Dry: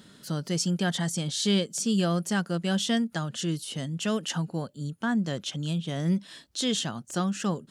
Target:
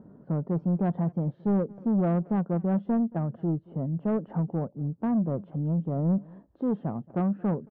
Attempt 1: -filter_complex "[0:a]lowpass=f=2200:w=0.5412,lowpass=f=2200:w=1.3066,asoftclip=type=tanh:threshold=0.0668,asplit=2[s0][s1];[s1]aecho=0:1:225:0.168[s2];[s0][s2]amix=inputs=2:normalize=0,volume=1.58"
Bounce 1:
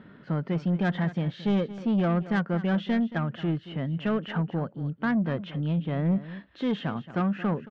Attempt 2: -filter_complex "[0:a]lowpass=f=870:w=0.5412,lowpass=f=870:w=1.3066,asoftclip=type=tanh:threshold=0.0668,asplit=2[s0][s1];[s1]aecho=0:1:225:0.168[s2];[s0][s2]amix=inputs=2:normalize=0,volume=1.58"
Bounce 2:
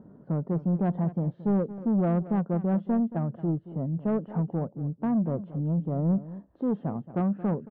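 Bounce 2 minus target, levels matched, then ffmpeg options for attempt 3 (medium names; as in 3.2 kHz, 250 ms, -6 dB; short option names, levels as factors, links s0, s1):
echo-to-direct +8.5 dB
-filter_complex "[0:a]lowpass=f=870:w=0.5412,lowpass=f=870:w=1.3066,asoftclip=type=tanh:threshold=0.0668,asplit=2[s0][s1];[s1]aecho=0:1:225:0.0631[s2];[s0][s2]amix=inputs=2:normalize=0,volume=1.58"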